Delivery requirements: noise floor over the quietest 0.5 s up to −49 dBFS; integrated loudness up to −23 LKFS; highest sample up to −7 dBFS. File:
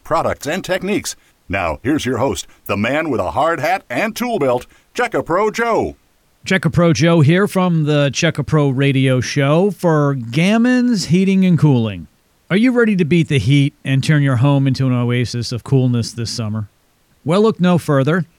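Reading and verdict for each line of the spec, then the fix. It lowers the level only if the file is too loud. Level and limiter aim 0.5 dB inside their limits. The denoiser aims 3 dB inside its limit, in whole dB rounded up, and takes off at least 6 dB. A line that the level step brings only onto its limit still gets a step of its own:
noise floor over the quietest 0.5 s −57 dBFS: in spec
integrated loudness −16.0 LKFS: out of spec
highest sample −2.5 dBFS: out of spec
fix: level −7.5 dB

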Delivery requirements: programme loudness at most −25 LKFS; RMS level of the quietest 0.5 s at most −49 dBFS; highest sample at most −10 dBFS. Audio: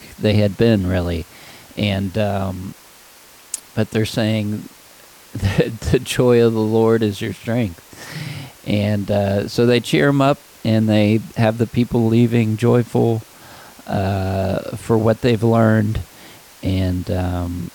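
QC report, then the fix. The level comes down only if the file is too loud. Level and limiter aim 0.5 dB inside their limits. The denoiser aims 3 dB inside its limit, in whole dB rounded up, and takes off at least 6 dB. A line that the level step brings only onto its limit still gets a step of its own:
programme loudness −18.5 LKFS: out of spec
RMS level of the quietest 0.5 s −45 dBFS: out of spec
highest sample −4.0 dBFS: out of spec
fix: level −7 dB

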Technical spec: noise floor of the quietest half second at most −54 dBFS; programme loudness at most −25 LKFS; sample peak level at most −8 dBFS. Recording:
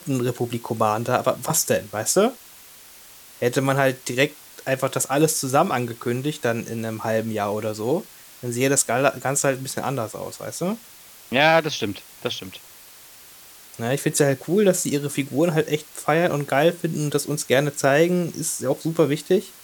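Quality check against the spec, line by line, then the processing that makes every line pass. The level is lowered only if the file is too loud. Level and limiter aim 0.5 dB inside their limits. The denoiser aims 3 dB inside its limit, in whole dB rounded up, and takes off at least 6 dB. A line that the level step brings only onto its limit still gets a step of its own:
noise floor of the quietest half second −46 dBFS: out of spec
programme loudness −22.5 LKFS: out of spec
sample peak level −4.5 dBFS: out of spec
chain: broadband denoise 8 dB, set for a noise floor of −46 dBFS
level −3 dB
brickwall limiter −8.5 dBFS

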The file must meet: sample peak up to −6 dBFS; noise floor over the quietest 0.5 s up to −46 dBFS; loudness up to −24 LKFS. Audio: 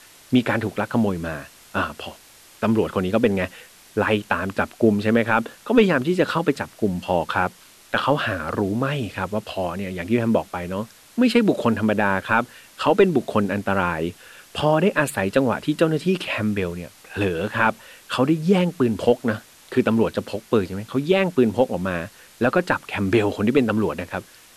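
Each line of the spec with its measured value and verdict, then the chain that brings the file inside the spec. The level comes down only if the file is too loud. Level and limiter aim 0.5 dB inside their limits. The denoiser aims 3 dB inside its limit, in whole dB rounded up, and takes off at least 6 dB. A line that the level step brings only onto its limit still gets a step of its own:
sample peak −5.5 dBFS: out of spec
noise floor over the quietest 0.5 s −48 dBFS: in spec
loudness −22.0 LKFS: out of spec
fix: level −2.5 dB

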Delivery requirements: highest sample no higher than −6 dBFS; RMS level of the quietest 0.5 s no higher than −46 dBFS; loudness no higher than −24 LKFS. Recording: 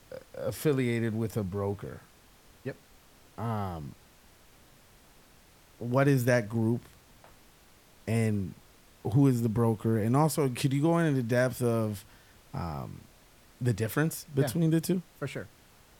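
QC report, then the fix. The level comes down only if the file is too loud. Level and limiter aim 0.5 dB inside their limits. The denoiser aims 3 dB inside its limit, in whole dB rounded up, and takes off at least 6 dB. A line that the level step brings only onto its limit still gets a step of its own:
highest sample −12.0 dBFS: in spec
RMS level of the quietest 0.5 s −58 dBFS: in spec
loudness −29.5 LKFS: in spec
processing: no processing needed

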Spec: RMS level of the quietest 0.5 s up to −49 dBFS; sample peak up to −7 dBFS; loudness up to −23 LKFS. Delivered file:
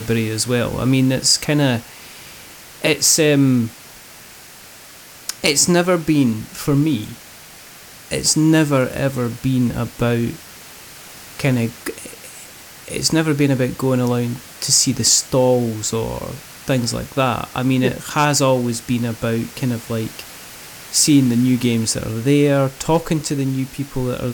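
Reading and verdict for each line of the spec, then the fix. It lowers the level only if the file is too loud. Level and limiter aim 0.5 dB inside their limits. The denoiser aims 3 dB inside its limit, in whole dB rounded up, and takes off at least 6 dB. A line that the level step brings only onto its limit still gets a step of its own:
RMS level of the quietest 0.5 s −41 dBFS: out of spec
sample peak −3.0 dBFS: out of spec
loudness −17.5 LKFS: out of spec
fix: broadband denoise 6 dB, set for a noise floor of −41 dBFS
level −6 dB

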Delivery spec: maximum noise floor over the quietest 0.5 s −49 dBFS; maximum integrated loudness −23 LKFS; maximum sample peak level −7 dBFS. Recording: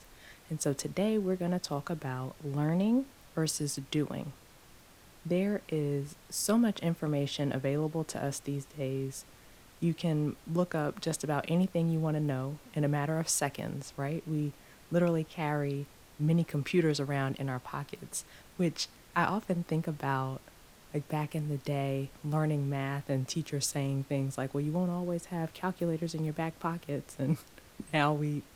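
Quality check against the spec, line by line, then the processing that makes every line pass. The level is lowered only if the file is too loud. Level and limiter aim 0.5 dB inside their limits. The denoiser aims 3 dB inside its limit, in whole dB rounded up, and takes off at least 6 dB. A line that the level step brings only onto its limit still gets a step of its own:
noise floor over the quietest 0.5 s −57 dBFS: in spec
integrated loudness −33.0 LKFS: in spec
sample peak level −12.5 dBFS: in spec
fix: no processing needed

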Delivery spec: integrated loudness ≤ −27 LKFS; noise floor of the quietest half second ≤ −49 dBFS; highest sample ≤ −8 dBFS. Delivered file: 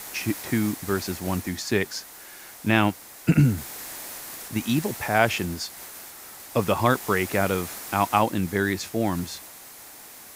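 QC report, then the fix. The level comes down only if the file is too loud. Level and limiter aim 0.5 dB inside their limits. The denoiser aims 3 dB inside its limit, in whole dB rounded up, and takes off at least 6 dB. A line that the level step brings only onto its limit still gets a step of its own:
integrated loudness −25.5 LKFS: out of spec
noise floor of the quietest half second −45 dBFS: out of spec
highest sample −3.5 dBFS: out of spec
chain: broadband denoise 6 dB, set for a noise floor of −45 dBFS
level −2 dB
brickwall limiter −8.5 dBFS

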